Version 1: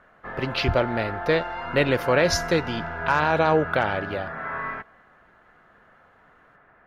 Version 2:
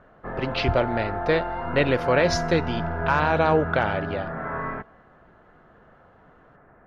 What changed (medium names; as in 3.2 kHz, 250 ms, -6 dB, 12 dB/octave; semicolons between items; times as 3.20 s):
background: add tilt shelf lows +8.5 dB, about 1.2 kHz; master: add distance through air 72 m